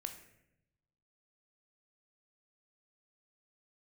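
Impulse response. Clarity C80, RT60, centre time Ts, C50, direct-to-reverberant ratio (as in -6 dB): 12.0 dB, 0.80 s, 16 ms, 9.0 dB, 5.5 dB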